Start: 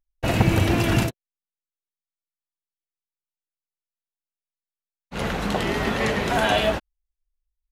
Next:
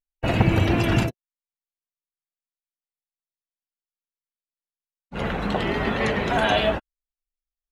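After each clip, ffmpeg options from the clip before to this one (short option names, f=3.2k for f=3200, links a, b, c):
-af "afftdn=nr=14:nf=-36"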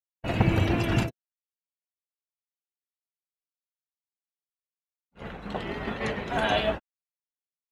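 -af "agate=range=-33dB:threshold=-18dB:ratio=3:detection=peak,volume=-3.5dB"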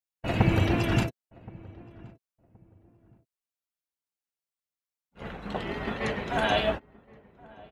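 -filter_complex "[0:a]asplit=2[a][b];[b]adelay=1072,lowpass=f=900:p=1,volume=-21.5dB,asplit=2[c][d];[d]adelay=1072,lowpass=f=900:p=1,volume=0.25[e];[a][c][e]amix=inputs=3:normalize=0"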